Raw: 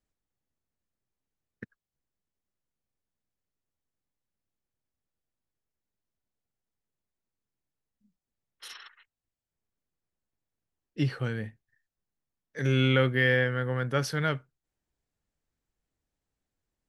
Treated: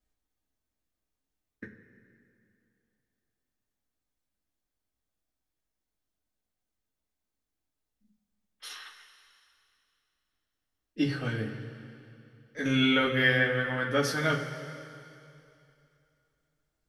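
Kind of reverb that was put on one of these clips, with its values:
coupled-rooms reverb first 0.21 s, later 2.7 s, from −18 dB, DRR −4.5 dB
level −3.5 dB

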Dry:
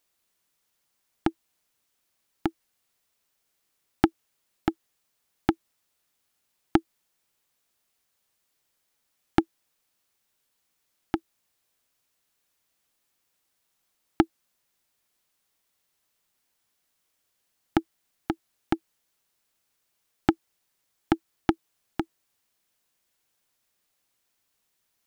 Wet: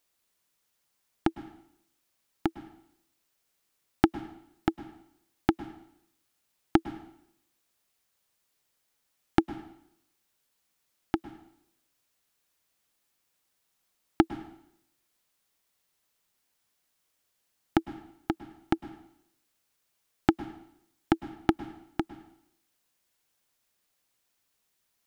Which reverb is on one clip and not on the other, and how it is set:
dense smooth reverb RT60 0.73 s, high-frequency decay 0.95×, pre-delay 95 ms, DRR 14.5 dB
level −1 dB

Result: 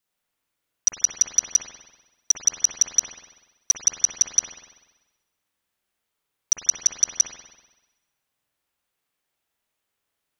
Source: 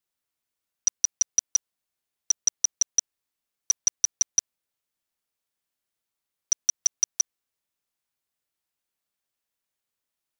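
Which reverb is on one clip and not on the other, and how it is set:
spring reverb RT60 1.1 s, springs 48 ms, chirp 60 ms, DRR −3 dB
level +3.5 dB

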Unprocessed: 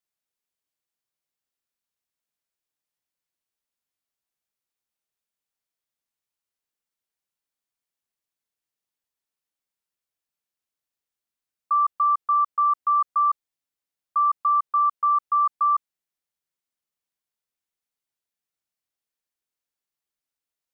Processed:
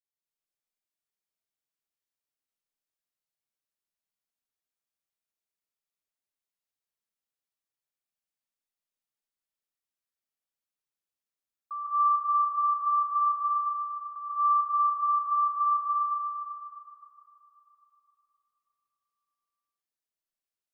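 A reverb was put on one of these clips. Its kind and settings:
comb and all-pass reverb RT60 3.4 s, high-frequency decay 1×, pre-delay 105 ms, DRR −9.5 dB
level −15.5 dB

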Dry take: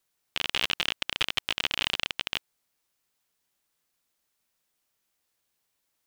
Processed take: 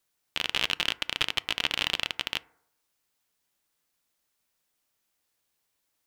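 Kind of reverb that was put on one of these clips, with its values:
feedback delay network reverb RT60 0.74 s, low-frequency decay 0.8×, high-frequency decay 0.3×, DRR 17 dB

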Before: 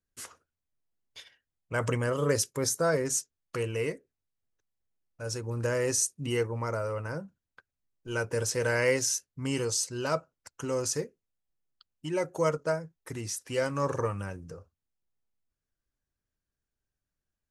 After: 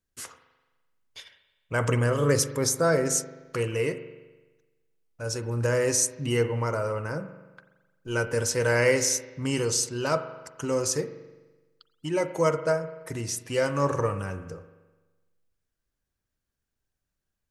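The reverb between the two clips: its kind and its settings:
spring reverb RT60 1.2 s, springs 42 ms, chirp 70 ms, DRR 10 dB
level +3.5 dB

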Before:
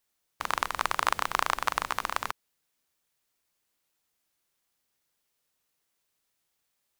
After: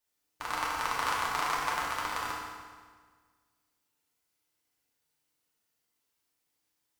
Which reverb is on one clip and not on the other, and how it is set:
feedback delay network reverb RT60 1.6 s, low-frequency decay 1.2×, high-frequency decay 0.85×, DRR −6 dB
level −8.5 dB

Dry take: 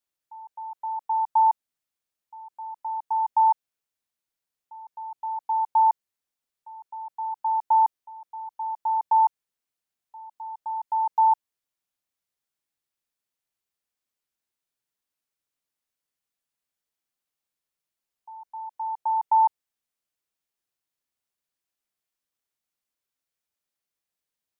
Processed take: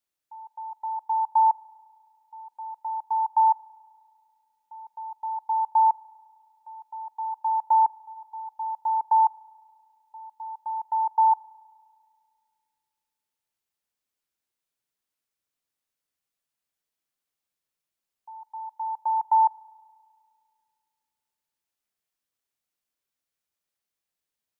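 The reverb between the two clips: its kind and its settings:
spring reverb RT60 2.2 s, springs 34 ms, chirp 50 ms, DRR 19 dB

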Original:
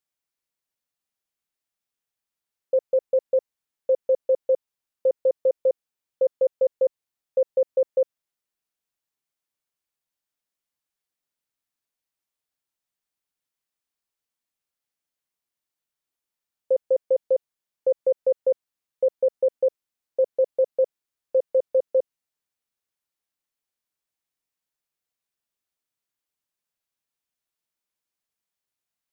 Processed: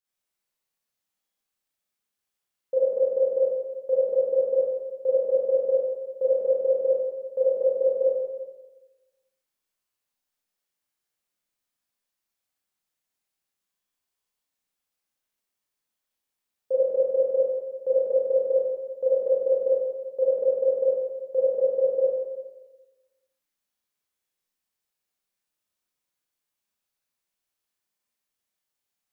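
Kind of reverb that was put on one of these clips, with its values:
four-comb reverb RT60 1.2 s, combs from 30 ms, DRR −9 dB
level −6.5 dB

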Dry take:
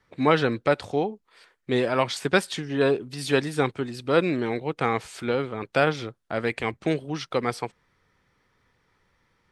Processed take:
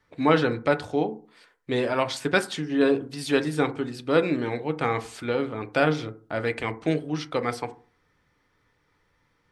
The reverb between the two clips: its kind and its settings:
feedback delay network reverb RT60 0.4 s, low-frequency decay 1.2×, high-frequency decay 0.35×, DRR 8 dB
level −1.5 dB

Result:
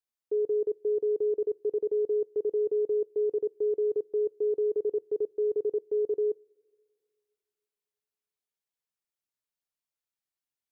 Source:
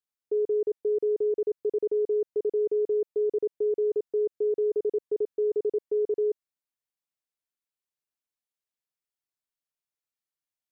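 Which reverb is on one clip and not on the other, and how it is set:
coupled-rooms reverb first 0.24 s, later 2.3 s, from −20 dB, DRR 20 dB
level −2 dB

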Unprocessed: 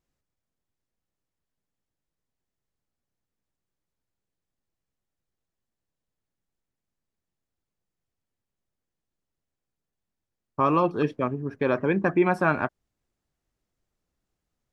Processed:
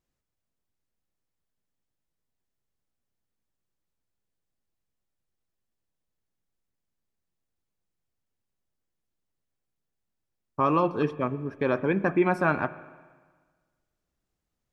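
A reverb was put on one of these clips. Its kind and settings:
spring reverb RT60 1.5 s, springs 38/47/60 ms, chirp 80 ms, DRR 15.5 dB
level −1.5 dB

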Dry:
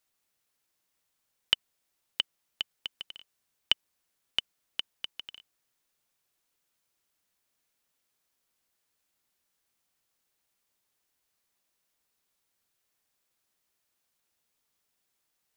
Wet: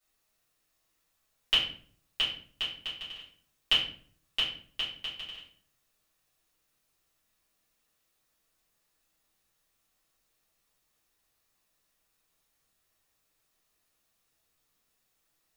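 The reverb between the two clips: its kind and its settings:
rectangular room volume 56 cubic metres, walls mixed, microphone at 2.5 metres
level −7.5 dB

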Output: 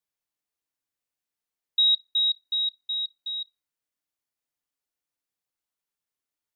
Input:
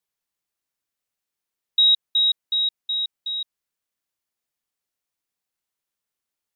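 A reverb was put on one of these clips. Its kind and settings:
feedback delay network reverb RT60 0.94 s, low-frequency decay 1×, high-frequency decay 0.25×, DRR 7 dB
level −5 dB

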